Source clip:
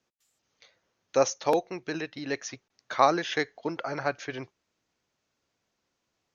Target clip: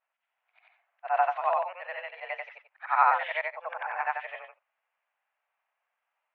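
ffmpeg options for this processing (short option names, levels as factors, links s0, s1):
-af "afftfilt=real='re':imag='-im':win_size=8192:overlap=0.75,highpass=f=490:t=q:w=0.5412,highpass=f=490:t=q:w=1.307,lowpass=f=2500:t=q:w=0.5176,lowpass=f=2500:t=q:w=0.7071,lowpass=f=2500:t=q:w=1.932,afreqshift=180,volume=1.88"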